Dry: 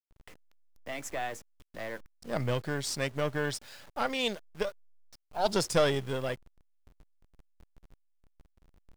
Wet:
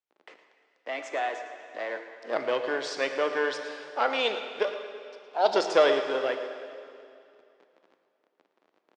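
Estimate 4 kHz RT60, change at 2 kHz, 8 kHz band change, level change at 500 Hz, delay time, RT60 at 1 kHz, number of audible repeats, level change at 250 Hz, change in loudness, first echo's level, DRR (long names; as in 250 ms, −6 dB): 2.3 s, +5.5 dB, −7.0 dB, +6.0 dB, 113 ms, 2.5 s, 1, −1.5 dB, +4.5 dB, −13.5 dB, 6.0 dB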